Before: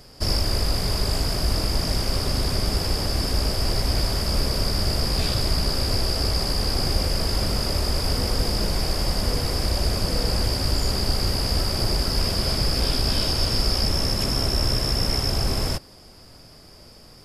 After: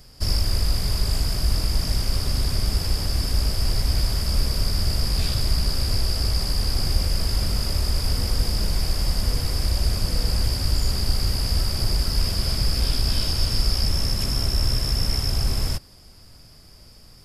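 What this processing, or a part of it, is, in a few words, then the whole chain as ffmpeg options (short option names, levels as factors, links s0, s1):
smiley-face EQ: -af "lowshelf=f=130:g=6,equalizer=f=480:t=o:w=2.5:g=-5.5,highshelf=f=9300:g=4.5,volume=0.75"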